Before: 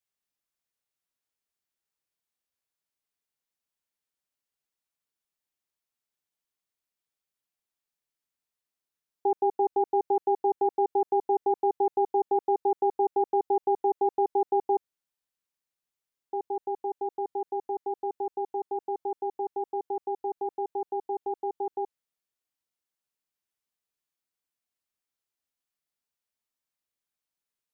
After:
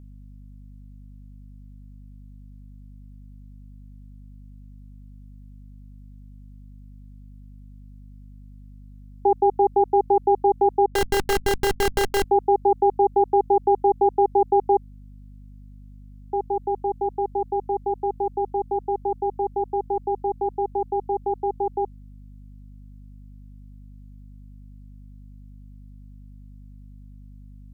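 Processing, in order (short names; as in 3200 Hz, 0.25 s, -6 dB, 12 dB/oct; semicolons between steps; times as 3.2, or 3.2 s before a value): low shelf 93 Hz +5 dB; 10.86–12.24 Schmitt trigger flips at -33.5 dBFS; hum 50 Hz, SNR 18 dB; gain +6.5 dB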